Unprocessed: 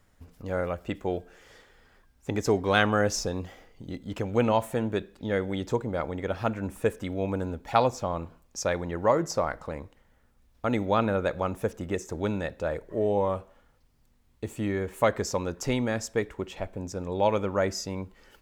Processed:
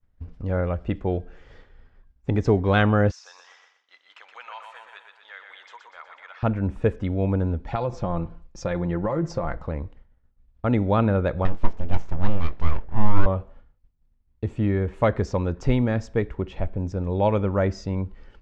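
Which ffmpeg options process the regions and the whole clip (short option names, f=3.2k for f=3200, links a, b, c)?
-filter_complex "[0:a]asettb=1/sr,asplit=3[a][b][c];[a]atrim=end=3.114[d];[b]atrim=start=3.11:end=6.43,asetpts=PTS-STARTPTS,afade=t=in:d=0.004:c=qsin,afade=t=out:st=3.316:d=0.004:c=qsin,highpass=f=1.1k:w=0.5412,highpass=f=1.1k:w=1.3066,acompressor=threshold=-46dB:ratio=1.5:attack=3.2:release=140:knee=1:detection=peak,aecho=1:1:122|244|366|488|610|732|854:0.531|0.292|0.161|0.0883|0.0486|0.0267|0.0147,atrim=end_sample=146412[e];[c]atrim=start=6.426[f];[d][e]acrossfade=d=0.004:c1=hsin:c2=qsin[g];[g][f]acrossfade=d=0.004:c1=qsin:c2=hsin,asettb=1/sr,asplit=3[h][i][j];[h]atrim=end=7.734[k];[i]atrim=start=7.73:end=9.57,asetpts=PTS-STARTPTS,afade=t=in:d=0.004:c=qsin,afade=t=out:st=1.836:d=0.004:c=qsin,aecho=1:1:5.8:0.53,atrim=end_sample=81144,acompressor=threshold=-24dB:ratio=6:attack=3.2:release=140:knee=1:detection=peak[l];[j]atrim=start=9.566[m];[k][l]acrossfade=d=0.004:c1=hsin:c2=qsin[n];[n][m]acrossfade=d=0.004:c1=qsin:c2=hsin,asettb=1/sr,asplit=3[o][p][q];[o]atrim=end=11.454[r];[p]atrim=start=11.45:end=13.26,asetpts=PTS-STARTPTS,afade=t=in:d=0.004:c=qsin,afade=t=out:st=1.806:d=0.004:c=qsin,aeval=exprs='abs(val(0))':c=same,asplit=2[s][t];[t]adelay=24,volume=-14dB[u];[s][u]amix=inputs=2:normalize=0,atrim=end_sample=79821[v];[q]atrim=start=13.256[w];[r][v]acrossfade=d=0.004:c1=hsin:c2=qsin[x];[x][w]acrossfade=d=0.004:c1=qsin:c2=hsin,lowpass=5.2k,agate=range=-33dB:threshold=-53dB:ratio=3:detection=peak,aemphasis=mode=reproduction:type=bsi,volume=1dB"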